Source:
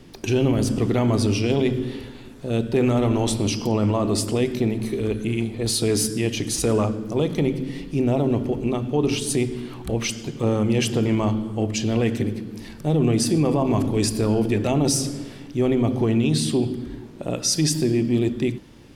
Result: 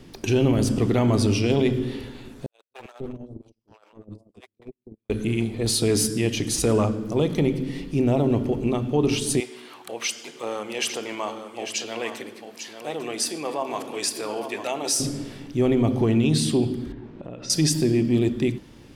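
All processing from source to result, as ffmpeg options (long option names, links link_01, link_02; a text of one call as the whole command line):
ffmpeg -i in.wav -filter_complex "[0:a]asettb=1/sr,asplit=3[link_01][link_02][link_03];[link_01]atrim=end=2.464[link_04];[link_02]atrim=start=2.46:end=5.1,asetpts=PTS-STARTPTS,afade=type=in:duration=0.004:curve=qsin,afade=type=out:start_time=2.636:duration=0.004:curve=qsin,agate=range=-60dB:threshold=-17dB:ratio=16:release=100:detection=peak,aeval=exprs='clip(val(0),-1,0.0141)':channel_layout=same,acrossover=split=620[link_05][link_06];[link_05]adelay=250[link_07];[link_07][link_06]amix=inputs=2:normalize=0,atrim=end_sample=116424[link_08];[link_03]atrim=start=5.096[link_09];[link_04][link_08]acrossfade=duration=0.004:curve1=hsin:curve2=qsin[link_10];[link_10][link_09]acrossfade=duration=0.004:curve1=qsin:curve2=hsin,asettb=1/sr,asplit=3[link_11][link_12][link_13];[link_11]atrim=end=9.404[link_14];[link_12]atrim=start=9.4:end=15,asetpts=PTS-STARTPTS,afade=type=in:duration=0.004:curve=qsin,afade=type=out:start_time=5.596:duration=0.004:curve=qsin,highpass=650,aecho=1:1:848:0.355,atrim=end_sample=246960[link_15];[link_13]atrim=start=14.996[link_16];[link_14][link_15]acrossfade=duration=0.004:curve1=hsin:curve2=qsin[link_17];[link_17][link_16]acrossfade=duration=0.004:curve1=qsin:curve2=hsin,asettb=1/sr,asplit=3[link_18][link_19][link_20];[link_18]atrim=end=16.924[link_21];[link_19]atrim=start=16.92:end=17.5,asetpts=PTS-STARTPTS,afade=type=in:duration=0.004:curve=qsin,afade=type=out:start_time=0.576:duration=0.004:curve=qsin,lowpass=2700,acompressor=threshold=-33dB:ratio=6:attack=3.2:release=140:knee=1:detection=peak[link_22];[link_20]atrim=start=17.496[link_23];[link_21][link_22]acrossfade=duration=0.004:curve1=hsin:curve2=qsin[link_24];[link_24][link_23]acrossfade=duration=0.004:curve1=qsin:curve2=hsin" out.wav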